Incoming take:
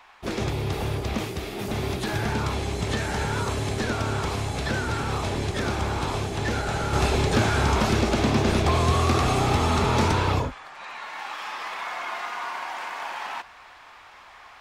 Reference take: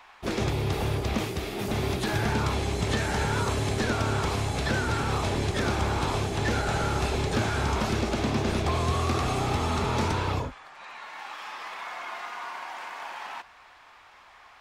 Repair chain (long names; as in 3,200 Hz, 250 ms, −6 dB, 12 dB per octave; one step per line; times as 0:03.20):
level 0 dB, from 0:06.93 −5 dB